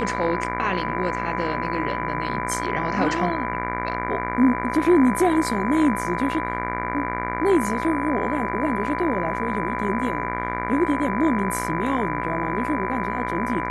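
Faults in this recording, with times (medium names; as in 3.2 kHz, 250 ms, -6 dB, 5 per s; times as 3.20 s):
buzz 60 Hz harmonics 39 -29 dBFS
whine 1 kHz -28 dBFS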